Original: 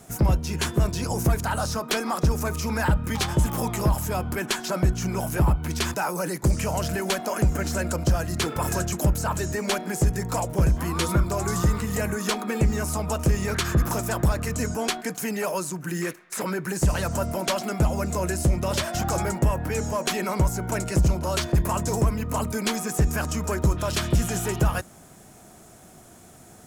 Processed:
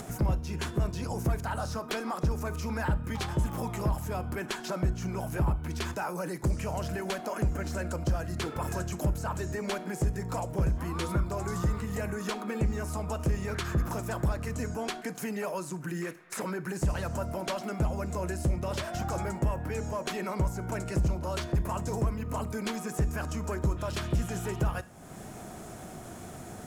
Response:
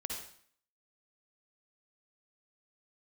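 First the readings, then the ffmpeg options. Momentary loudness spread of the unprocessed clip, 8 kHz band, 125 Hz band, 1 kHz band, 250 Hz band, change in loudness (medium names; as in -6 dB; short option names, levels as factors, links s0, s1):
4 LU, -12.0 dB, -6.5 dB, -7.0 dB, -6.5 dB, -7.0 dB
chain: -filter_complex "[0:a]highshelf=f=3700:g=-7.5,acompressor=mode=upward:threshold=0.0708:ratio=2.5,asplit=2[s0][s1];[1:a]atrim=start_sample=2205,asetrate=70560,aresample=44100[s2];[s1][s2]afir=irnorm=-1:irlink=0,volume=0.316[s3];[s0][s3]amix=inputs=2:normalize=0,volume=0.398"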